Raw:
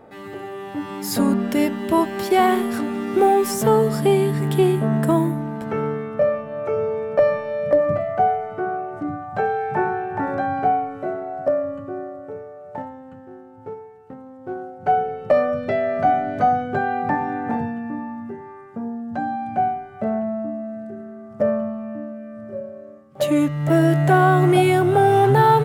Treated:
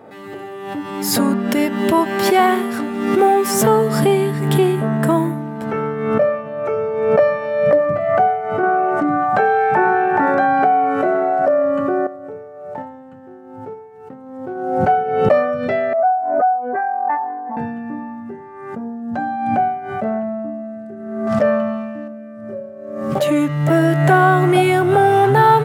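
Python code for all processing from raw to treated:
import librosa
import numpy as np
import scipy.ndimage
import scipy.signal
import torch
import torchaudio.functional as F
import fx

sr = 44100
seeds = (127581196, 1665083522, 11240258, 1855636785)

y = fx.chain(x, sr, fx.highpass(hz=180.0, slope=12),
    fx.env_flatten(amount_pct=70), at=(8.63, 12.07))
y = fx.chain(y, sr, fx.spec_expand(power=2.3),
    fx.highpass(hz=550.0, slope=12),
    fx.doppler_dist(depth_ms=0.1), at=(15.93, 17.57))
y = fx.chain(y, sr, fx.peak_eq(hz=3800.0, db=12.0, octaves=2.3),
    fx.notch(hz=390.0, q=8.3),
    fx.sustainer(db_per_s=30.0), at=(21.27, 22.08))
y = scipy.signal.sosfilt(scipy.signal.butter(2, 110.0, 'highpass', fs=sr, output='sos'), y)
y = fx.dynamic_eq(y, sr, hz=1500.0, q=0.78, threshold_db=-32.0, ratio=4.0, max_db=4)
y = fx.pre_swell(y, sr, db_per_s=45.0)
y = F.gain(torch.from_numpy(y), 1.0).numpy()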